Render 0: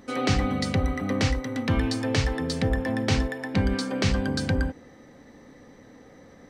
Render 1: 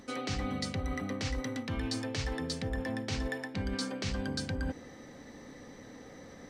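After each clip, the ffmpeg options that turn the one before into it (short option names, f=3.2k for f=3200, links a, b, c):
-af "equalizer=f=5.8k:w=0.54:g=5,areverse,acompressor=threshold=-32dB:ratio=6,areverse"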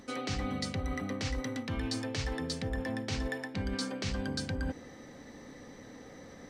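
-af anull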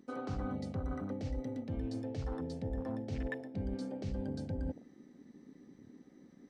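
-af "afwtdn=0.0126,volume=-2.5dB"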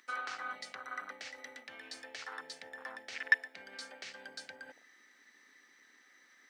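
-af "highpass=f=1.7k:t=q:w=2,aeval=exprs='0.0562*(cos(1*acos(clip(val(0)/0.0562,-1,1)))-cos(1*PI/2))+0.00501*(cos(3*acos(clip(val(0)/0.0562,-1,1)))-cos(3*PI/2))':c=same,volume=12dB"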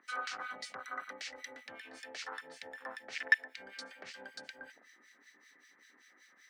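-filter_complex "[0:a]acrossover=split=1600[a][b];[a]aeval=exprs='val(0)*(1-1/2+1/2*cos(2*PI*5.2*n/s))':c=same[c];[b]aeval=exprs='val(0)*(1-1/2-1/2*cos(2*PI*5.2*n/s))':c=same[d];[c][d]amix=inputs=2:normalize=0,volume=5.5dB"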